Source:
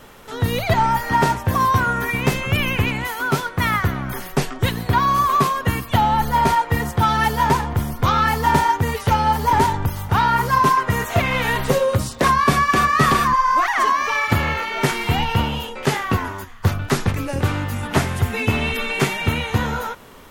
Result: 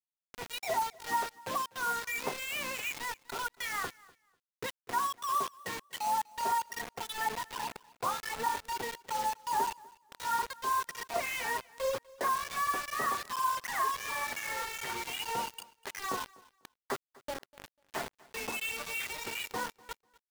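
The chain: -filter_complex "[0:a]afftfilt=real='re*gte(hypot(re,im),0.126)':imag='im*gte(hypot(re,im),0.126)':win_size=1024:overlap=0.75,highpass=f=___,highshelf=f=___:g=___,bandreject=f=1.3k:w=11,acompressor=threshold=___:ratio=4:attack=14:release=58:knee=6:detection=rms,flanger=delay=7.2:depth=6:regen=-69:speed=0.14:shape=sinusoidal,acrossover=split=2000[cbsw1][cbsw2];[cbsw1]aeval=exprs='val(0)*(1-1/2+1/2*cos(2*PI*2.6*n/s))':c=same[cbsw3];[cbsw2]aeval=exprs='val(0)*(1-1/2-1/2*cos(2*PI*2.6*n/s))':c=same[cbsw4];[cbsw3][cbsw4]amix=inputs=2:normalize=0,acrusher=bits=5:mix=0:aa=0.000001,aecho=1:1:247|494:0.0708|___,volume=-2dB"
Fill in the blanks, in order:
530, 9k, 8.5, -21dB, 0.0142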